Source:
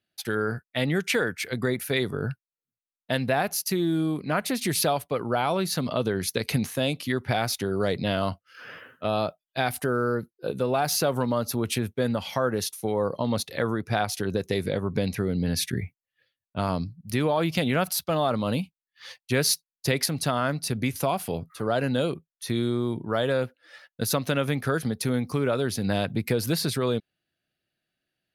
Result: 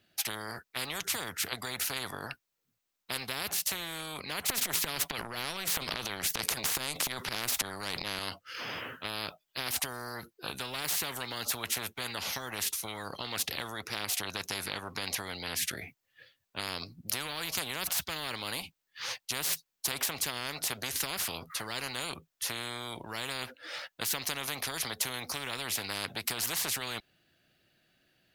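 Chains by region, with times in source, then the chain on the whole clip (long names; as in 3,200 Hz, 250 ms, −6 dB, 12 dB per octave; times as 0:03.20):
0:04.48–0:08.19: parametric band 170 Hz +11 dB 0.75 octaves + transient designer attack −12 dB, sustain +11 dB
whole clip: parametric band 9,900 Hz −6.5 dB 0.27 octaves; every bin compressed towards the loudest bin 10 to 1; level +2 dB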